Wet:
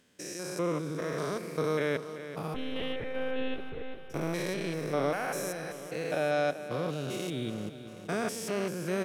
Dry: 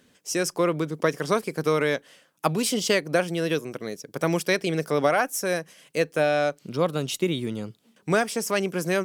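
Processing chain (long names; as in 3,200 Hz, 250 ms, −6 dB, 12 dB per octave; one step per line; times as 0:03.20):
spectrum averaged block by block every 200 ms
0:02.54–0:04.10: one-pitch LPC vocoder at 8 kHz 260 Hz
repeating echo 386 ms, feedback 58%, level −12 dB
level −4.5 dB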